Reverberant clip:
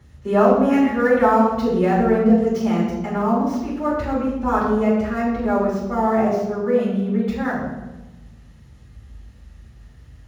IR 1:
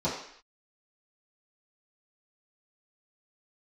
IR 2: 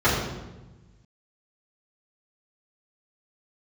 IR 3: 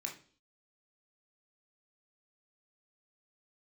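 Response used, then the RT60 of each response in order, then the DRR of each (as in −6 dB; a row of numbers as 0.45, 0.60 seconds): 2; non-exponential decay, 1.1 s, 0.45 s; −11.5, −11.5, 0.0 decibels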